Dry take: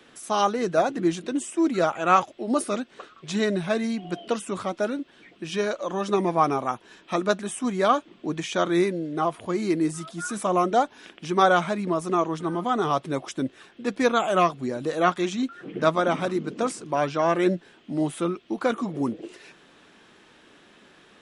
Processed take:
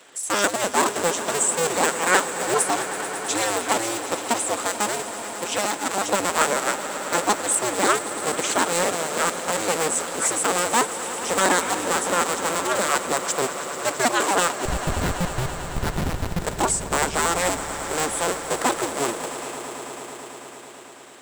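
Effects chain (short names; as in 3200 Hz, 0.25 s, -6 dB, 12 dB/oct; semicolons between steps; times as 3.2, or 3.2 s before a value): cycle switcher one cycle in 2, inverted; HPF 280 Hz 12 dB/oct; bell 7800 Hz +15 dB 0.39 oct; in parallel at -1 dB: limiter -12 dBFS, peak gain reduction 12 dB; 14.65–16.42 on the sum: Schmitt trigger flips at -12 dBFS; harmonic-percussive split harmonic -6 dB; soft clip -7.5 dBFS, distortion -18 dB; on a send: swelling echo 0.11 s, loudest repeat 5, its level -15.5 dB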